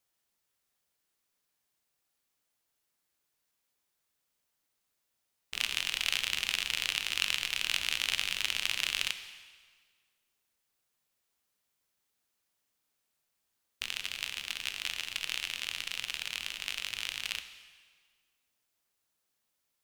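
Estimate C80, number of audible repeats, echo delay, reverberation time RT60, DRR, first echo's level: 12.0 dB, no echo, no echo, 1.6 s, 9.0 dB, no echo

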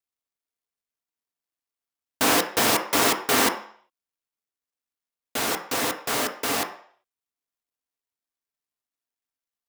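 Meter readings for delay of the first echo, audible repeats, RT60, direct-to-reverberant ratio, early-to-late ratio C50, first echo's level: no echo, no echo, 0.55 s, 3.0 dB, 10.5 dB, no echo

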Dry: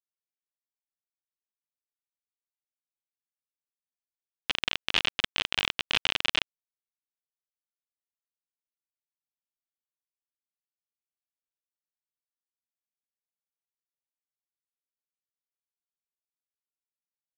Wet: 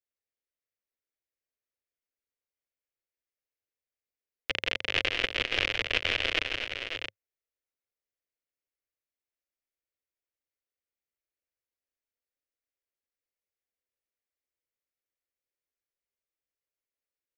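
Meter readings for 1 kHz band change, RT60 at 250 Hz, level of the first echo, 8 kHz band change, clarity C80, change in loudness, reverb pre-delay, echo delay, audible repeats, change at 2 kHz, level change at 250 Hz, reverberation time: -2.5 dB, no reverb, -5.5 dB, -4.0 dB, no reverb, -1.0 dB, no reverb, 167 ms, 4, +2.5 dB, +1.5 dB, no reverb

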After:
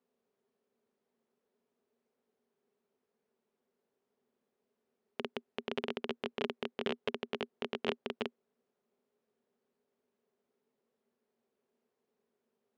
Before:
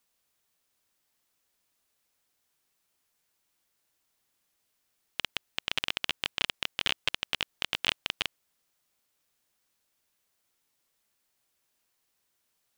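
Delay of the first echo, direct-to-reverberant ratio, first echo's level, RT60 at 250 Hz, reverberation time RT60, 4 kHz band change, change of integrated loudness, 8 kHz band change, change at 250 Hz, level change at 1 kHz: no echo, no reverb, no echo, no reverb, no reverb, -14.0 dB, -8.0 dB, under -20 dB, +8.0 dB, -3.0 dB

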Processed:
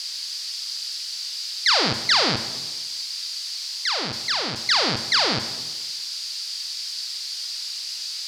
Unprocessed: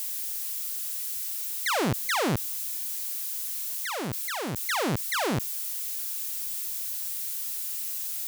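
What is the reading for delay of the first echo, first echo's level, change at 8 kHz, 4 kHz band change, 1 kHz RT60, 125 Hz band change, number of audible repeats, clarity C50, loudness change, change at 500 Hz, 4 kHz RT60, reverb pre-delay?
no echo, no echo, +1.0 dB, +16.0 dB, 1.1 s, -2.0 dB, no echo, 10.5 dB, +5.5 dB, +1.5 dB, 1.1 s, 16 ms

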